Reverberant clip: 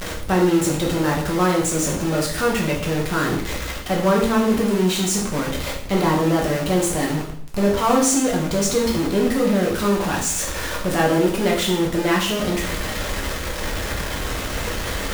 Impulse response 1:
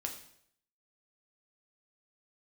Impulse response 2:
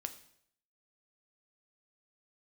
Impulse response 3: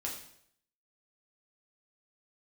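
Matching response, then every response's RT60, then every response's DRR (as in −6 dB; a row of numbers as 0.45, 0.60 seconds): 3; 0.70, 0.70, 0.70 seconds; 2.0, 7.5, −2.5 decibels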